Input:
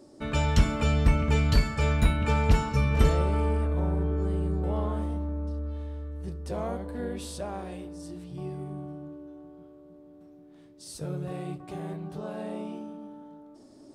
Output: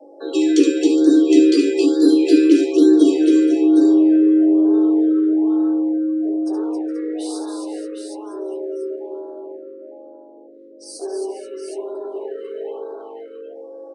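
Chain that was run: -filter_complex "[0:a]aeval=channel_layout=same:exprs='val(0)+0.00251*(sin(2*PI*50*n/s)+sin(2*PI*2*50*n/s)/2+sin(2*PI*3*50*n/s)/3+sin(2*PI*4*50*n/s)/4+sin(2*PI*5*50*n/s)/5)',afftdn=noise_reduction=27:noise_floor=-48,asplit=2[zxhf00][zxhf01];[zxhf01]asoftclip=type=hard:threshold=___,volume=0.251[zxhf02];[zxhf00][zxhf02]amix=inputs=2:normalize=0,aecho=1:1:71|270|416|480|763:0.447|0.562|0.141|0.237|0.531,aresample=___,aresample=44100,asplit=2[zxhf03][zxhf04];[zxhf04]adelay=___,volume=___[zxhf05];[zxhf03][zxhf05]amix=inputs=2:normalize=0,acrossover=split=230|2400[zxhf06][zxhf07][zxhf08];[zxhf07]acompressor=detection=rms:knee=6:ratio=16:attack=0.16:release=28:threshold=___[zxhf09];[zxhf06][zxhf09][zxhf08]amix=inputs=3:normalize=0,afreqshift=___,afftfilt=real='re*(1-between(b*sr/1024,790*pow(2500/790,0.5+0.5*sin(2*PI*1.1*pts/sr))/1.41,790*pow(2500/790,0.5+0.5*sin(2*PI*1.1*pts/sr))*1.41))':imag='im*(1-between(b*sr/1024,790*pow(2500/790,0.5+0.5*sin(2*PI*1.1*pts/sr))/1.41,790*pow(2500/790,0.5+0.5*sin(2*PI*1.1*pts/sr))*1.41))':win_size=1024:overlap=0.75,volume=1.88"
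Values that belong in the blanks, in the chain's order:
0.0596, 22050, 13, 0.398, 0.00891, 240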